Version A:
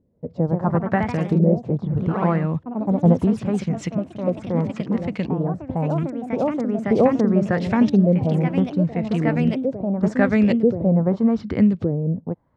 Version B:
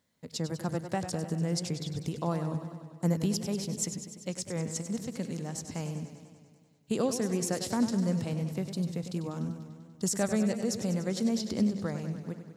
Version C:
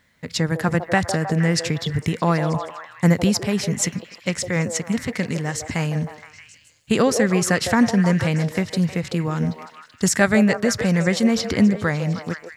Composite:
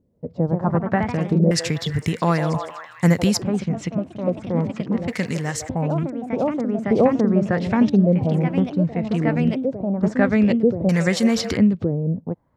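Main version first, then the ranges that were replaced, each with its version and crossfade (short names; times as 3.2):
A
1.51–3.42 from C
5.08–5.69 from C
10.89–11.57 from C
not used: B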